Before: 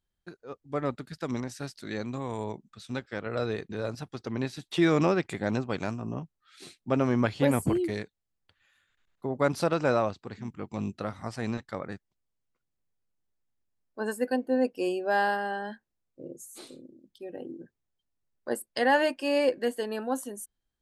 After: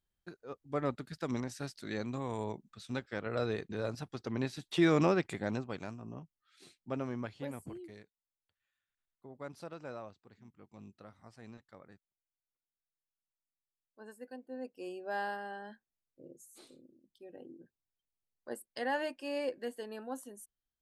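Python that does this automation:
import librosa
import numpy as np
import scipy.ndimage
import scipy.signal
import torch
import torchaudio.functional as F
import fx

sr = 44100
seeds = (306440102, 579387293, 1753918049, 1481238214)

y = fx.gain(x, sr, db=fx.line((5.23, -3.5), (5.88, -11.0), (6.93, -11.0), (7.65, -19.5), (14.41, -19.5), (15.15, -11.0)))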